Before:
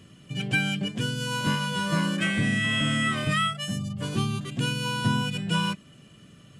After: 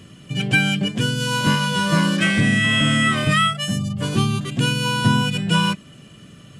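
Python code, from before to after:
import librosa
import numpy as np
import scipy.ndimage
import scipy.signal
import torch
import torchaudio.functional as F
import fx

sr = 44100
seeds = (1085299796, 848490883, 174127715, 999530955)

y = fx.dmg_noise_band(x, sr, seeds[0], low_hz=2800.0, high_hz=6000.0, level_db=-49.0, at=(1.19, 2.4), fade=0.02)
y = F.gain(torch.from_numpy(y), 7.5).numpy()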